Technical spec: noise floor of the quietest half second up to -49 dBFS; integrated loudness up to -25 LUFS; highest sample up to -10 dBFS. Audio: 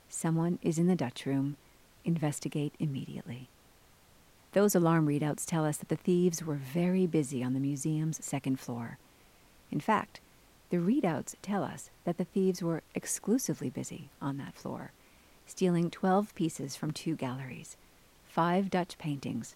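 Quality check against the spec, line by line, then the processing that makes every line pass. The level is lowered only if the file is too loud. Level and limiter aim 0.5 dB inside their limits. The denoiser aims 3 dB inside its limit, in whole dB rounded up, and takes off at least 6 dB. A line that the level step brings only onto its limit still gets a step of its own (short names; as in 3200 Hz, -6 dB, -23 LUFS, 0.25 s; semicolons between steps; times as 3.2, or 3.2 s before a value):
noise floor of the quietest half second -61 dBFS: OK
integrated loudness -32.5 LUFS: OK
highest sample -15.5 dBFS: OK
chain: none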